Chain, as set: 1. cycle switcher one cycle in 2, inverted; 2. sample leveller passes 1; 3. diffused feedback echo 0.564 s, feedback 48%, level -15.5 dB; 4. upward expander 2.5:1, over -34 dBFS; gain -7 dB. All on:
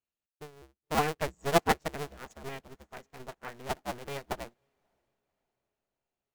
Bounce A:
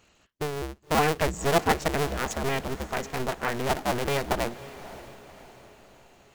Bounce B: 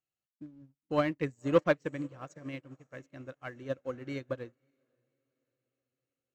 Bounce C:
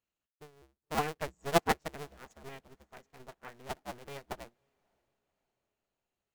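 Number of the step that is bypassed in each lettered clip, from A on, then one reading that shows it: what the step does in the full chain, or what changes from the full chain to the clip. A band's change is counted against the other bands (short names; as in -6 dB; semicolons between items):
4, crest factor change -6.0 dB; 1, 4 kHz band -9.0 dB; 2, crest factor change +3.5 dB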